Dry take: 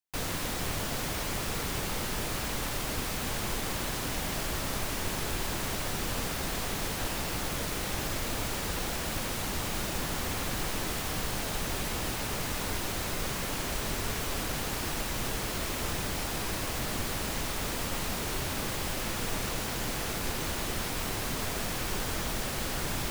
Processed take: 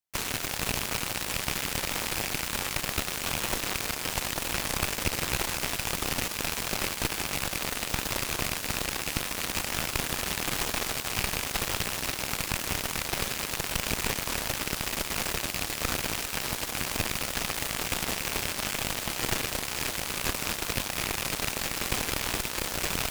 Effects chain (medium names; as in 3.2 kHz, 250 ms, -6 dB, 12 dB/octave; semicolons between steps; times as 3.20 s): rattle on loud lows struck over -39 dBFS, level -25 dBFS; Chebyshev shaper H 3 -23 dB, 7 -15 dB, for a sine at -17 dBFS; trim +7 dB